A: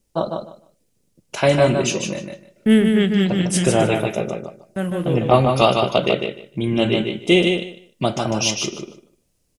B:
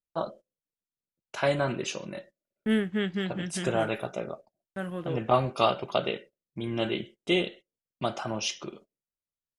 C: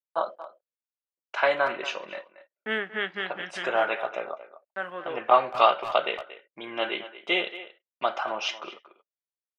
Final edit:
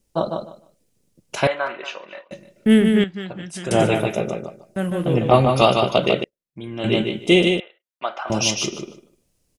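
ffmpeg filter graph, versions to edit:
-filter_complex "[2:a]asplit=2[s0][s1];[1:a]asplit=2[s2][s3];[0:a]asplit=5[s4][s5][s6][s7][s8];[s4]atrim=end=1.472[s9];[s0]atrim=start=1.468:end=2.312[s10];[s5]atrim=start=2.308:end=3.042[s11];[s2]atrim=start=3.038:end=3.712[s12];[s6]atrim=start=3.708:end=6.242[s13];[s3]atrim=start=6.238:end=6.842[s14];[s7]atrim=start=6.838:end=7.602[s15];[s1]atrim=start=7.598:end=8.302[s16];[s8]atrim=start=8.298[s17];[s9][s10]acrossfade=d=0.004:c1=hsin:c2=hsin[s18];[s18][s11]acrossfade=d=0.004:c1=hsin:c2=hsin[s19];[s19][s12]acrossfade=d=0.004:c1=hsin:c2=hsin[s20];[s20][s13]acrossfade=d=0.004:c1=hsin:c2=hsin[s21];[s21][s14]acrossfade=d=0.004:c1=hsin:c2=hsin[s22];[s22][s15]acrossfade=d=0.004:c1=hsin:c2=hsin[s23];[s23][s16]acrossfade=d=0.004:c1=hsin:c2=hsin[s24];[s24][s17]acrossfade=d=0.004:c1=hsin:c2=hsin"

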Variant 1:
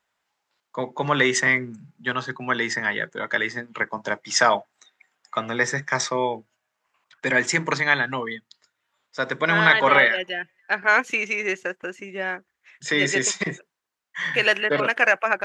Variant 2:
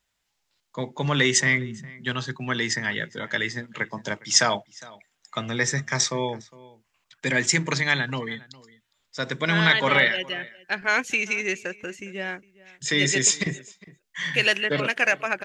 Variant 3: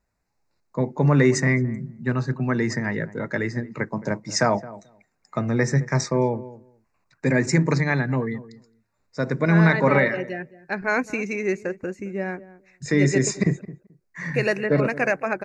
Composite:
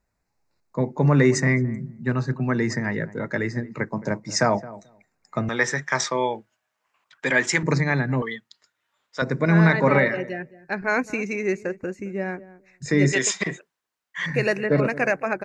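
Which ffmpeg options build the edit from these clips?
-filter_complex "[0:a]asplit=3[s0][s1][s2];[2:a]asplit=4[s3][s4][s5][s6];[s3]atrim=end=5.492[s7];[s0]atrim=start=5.488:end=7.632[s8];[s4]atrim=start=7.628:end=8.222[s9];[s1]atrim=start=8.218:end=9.222[s10];[s5]atrim=start=9.218:end=13.132[s11];[s2]atrim=start=13.128:end=14.262[s12];[s6]atrim=start=14.258[s13];[s7][s8]acrossfade=d=0.004:c1=hsin:c2=hsin[s14];[s14][s9]acrossfade=d=0.004:c1=hsin:c2=hsin[s15];[s15][s10]acrossfade=d=0.004:c1=hsin:c2=hsin[s16];[s16][s11]acrossfade=d=0.004:c1=hsin:c2=hsin[s17];[s17][s12]acrossfade=d=0.004:c1=hsin:c2=hsin[s18];[s18][s13]acrossfade=d=0.004:c1=hsin:c2=hsin"

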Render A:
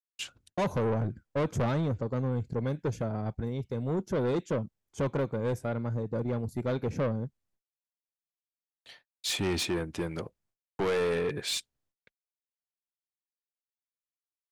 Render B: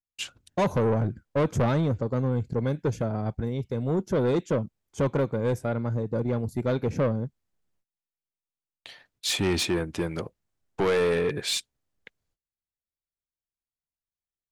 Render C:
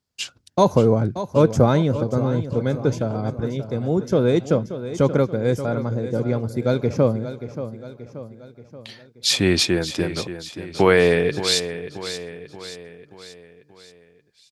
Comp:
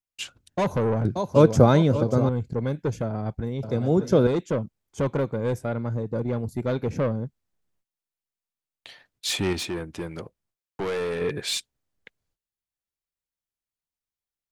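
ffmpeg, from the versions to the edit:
-filter_complex "[2:a]asplit=2[s0][s1];[1:a]asplit=4[s2][s3][s4][s5];[s2]atrim=end=1.052[s6];[s0]atrim=start=1.048:end=2.292[s7];[s3]atrim=start=2.288:end=3.632[s8];[s1]atrim=start=3.628:end=4.272[s9];[s4]atrim=start=4.268:end=9.532[s10];[0:a]atrim=start=9.528:end=11.212[s11];[s5]atrim=start=11.208[s12];[s6][s7]acrossfade=d=0.004:c1=hsin:c2=hsin[s13];[s13][s8]acrossfade=d=0.004:c1=hsin:c2=hsin[s14];[s14][s9]acrossfade=d=0.004:c1=hsin:c2=hsin[s15];[s15][s10]acrossfade=d=0.004:c1=hsin:c2=hsin[s16];[s16][s11]acrossfade=d=0.004:c1=hsin:c2=hsin[s17];[s17][s12]acrossfade=d=0.004:c1=hsin:c2=hsin"

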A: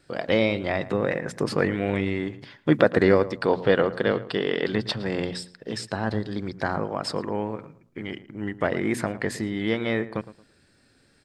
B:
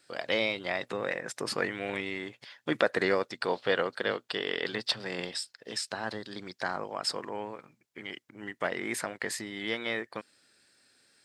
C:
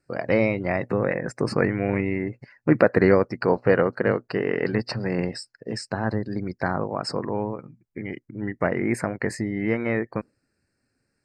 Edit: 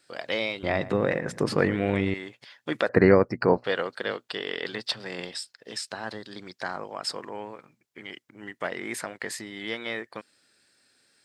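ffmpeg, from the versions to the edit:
-filter_complex "[1:a]asplit=3[s0][s1][s2];[s0]atrim=end=0.632[s3];[0:a]atrim=start=0.628:end=2.142[s4];[s1]atrim=start=2.138:end=2.892[s5];[2:a]atrim=start=2.888:end=3.642[s6];[s2]atrim=start=3.638[s7];[s3][s4]acrossfade=d=0.004:c1=hsin:c2=hsin[s8];[s8][s5]acrossfade=d=0.004:c1=hsin:c2=hsin[s9];[s9][s6]acrossfade=d=0.004:c1=hsin:c2=hsin[s10];[s10][s7]acrossfade=d=0.004:c1=hsin:c2=hsin"

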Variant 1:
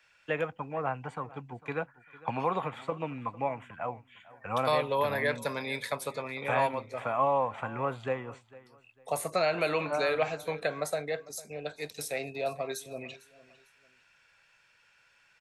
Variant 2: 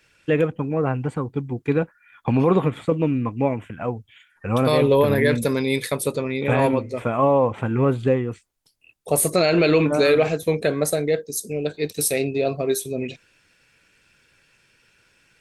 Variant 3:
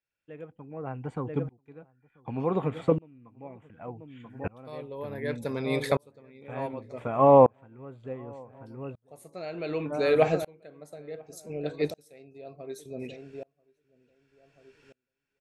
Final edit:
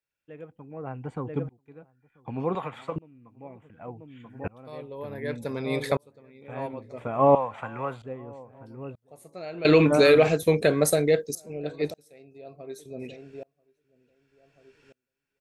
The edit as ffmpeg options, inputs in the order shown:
-filter_complex "[0:a]asplit=2[s0][s1];[2:a]asplit=4[s2][s3][s4][s5];[s2]atrim=end=2.552[s6];[s0]atrim=start=2.548:end=2.962[s7];[s3]atrim=start=2.958:end=7.352[s8];[s1]atrim=start=7.348:end=8.022[s9];[s4]atrim=start=8.018:end=9.652[s10];[1:a]atrim=start=9.648:end=11.352[s11];[s5]atrim=start=11.348[s12];[s6][s7]acrossfade=d=0.004:c1=hsin:c2=hsin[s13];[s13][s8]acrossfade=d=0.004:c1=hsin:c2=hsin[s14];[s14][s9]acrossfade=d=0.004:c1=hsin:c2=hsin[s15];[s15][s10]acrossfade=d=0.004:c1=hsin:c2=hsin[s16];[s16][s11]acrossfade=d=0.004:c1=hsin:c2=hsin[s17];[s17][s12]acrossfade=d=0.004:c1=hsin:c2=hsin"

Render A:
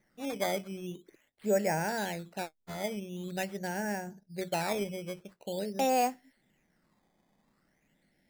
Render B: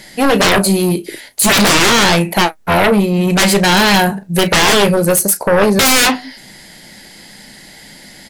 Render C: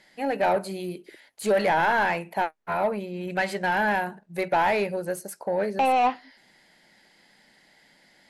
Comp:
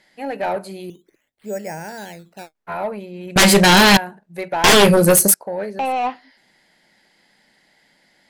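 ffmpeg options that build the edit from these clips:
-filter_complex "[1:a]asplit=2[s0][s1];[2:a]asplit=4[s2][s3][s4][s5];[s2]atrim=end=0.902[s6];[0:a]atrim=start=0.898:end=2.552[s7];[s3]atrim=start=2.548:end=3.362[s8];[s0]atrim=start=3.358:end=3.972[s9];[s4]atrim=start=3.968:end=4.642[s10];[s1]atrim=start=4.638:end=5.342[s11];[s5]atrim=start=5.338[s12];[s6][s7]acrossfade=d=0.004:c1=hsin:c2=hsin[s13];[s13][s8]acrossfade=d=0.004:c1=hsin:c2=hsin[s14];[s14][s9]acrossfade=d=0.004:c1=hsin:c2=hsin[s15];[s15][s10]acrossfade=d=0.004:c1=hsin:c2=hsin[s16];[s16][s11]acrossfade=d=0.004:c1=hsin:c2=hsin[s17];[s17][s12]acrossfade=d=0.004:c1=hsin:c2=hsin"

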